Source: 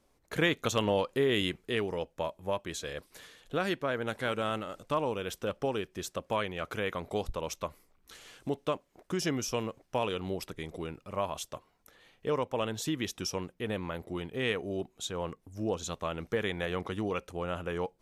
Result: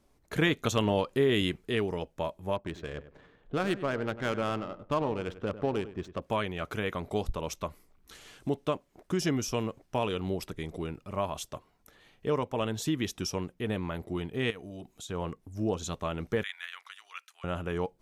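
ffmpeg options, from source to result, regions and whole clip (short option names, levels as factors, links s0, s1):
-filter_complex "[0:a]asettb=1/sr,asplit=3[s0][s1][s2];[s0]atrim=end=2.564[s3];[s1]atrim=start=2.56:end=6.22,asetpts=PTS-STARTPTS,afade=t=in:d=0.004:c=qsin,afade=t=out:st=3.656:d=0.004:c=qsin,adynamicsmooth=sensitivity=5.5:basefreq=1200,asplit=2[s4][s5];[s5]adelay=98,lowpass=f=1900:p=1,volume=0.224,asplit=2[s6][s7];[s7]adelay=98,lowpass=f=1900:p=1,volume=0.26,asplit=2[s8][s9];[s9]adelay=98,lowpass=f=1900:p=1,volume=0.26[s10];[s4][s6][s8][s10]amix=inputs=4:normalize=0,atrim=end_sample=161406[s11];[s2]atrim=start=6.216[s12];[s3][s11]acrossfade=d=0.004:c1=hsin:c2=qsin[s13];[s13][s12]acrossfade=d=0.004:c1=qsin:c2=hsin,asettb=1/sr,asplit=3[s14][s15][s16];[s14]atrim=end=14.504[s17];[s15]atrim=start=14.5:end=15.09,asetpts=PTS-STARTPTS,afade=t=in:d=0.004:c=qsin,afade=t=out:st=0.586:d=0.004:c=qsin,highshelf=f=3600:g=8,bandreject=f=390:w=7.4,acompressor=threshold=0.00501:ratio=2.5:attack=3.2:release=140:knee=1:detection=peak[s18];[s16]atrim=start=15.086[s19];[s17][s18]acrossfade=d=0.004:c1=hsin:c2=qsin[s20];[s20][s19]acrossfade=d=0.004:c1=qsin:c2=hsin,asettb=1/sr,asplit=3[s21][s22][s23];[s21]atrim=end=16.434[s24];[s22]atrim=start=16.43:end=17.44,asetpts=PTS-STARTPTS,afade=t=in:d=0.004:c=qsin,afade=t=out:st=1.006:d=0.004:c=qsin,highpass=f=1400:w=0.5412,highpass=f=1400:w=1.3066,tremolo=f=66:d=0.462[s25];[s23]atrim=start=17.436[s26];[s24][s25]acrossfade=d=0.004:c1=hsin:c2=qsin[s27];[s27][s26]acrossfade=d=0.004:c1=qsin:c2=hsin,lowshelf=f=380:g=5,bandreject=f=510:w=12"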